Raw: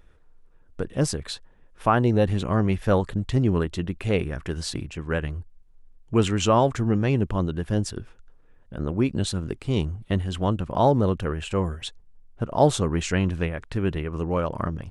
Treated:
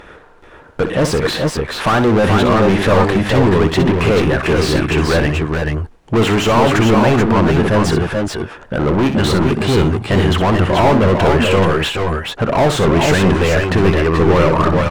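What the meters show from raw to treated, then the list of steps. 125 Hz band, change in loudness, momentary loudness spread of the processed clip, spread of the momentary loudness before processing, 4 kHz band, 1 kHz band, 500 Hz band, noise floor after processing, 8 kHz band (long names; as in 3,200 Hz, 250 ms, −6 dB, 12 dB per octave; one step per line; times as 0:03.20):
+9.5 dB, +10.5 dB, 7 LU, 12 LU, +13.0 dB, +11.5 dB, +12.0 dB, −41 dBFS, +8.0 dB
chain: mid-hump overdrive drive 38 dB, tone 1,500 Hz, clips at −5.5 dBFS
on a send: multi-tap delay 62/425/438 ms −9.5/−8/−5 dB
on the sum: MP3 192 kbit/s 44,100 Hz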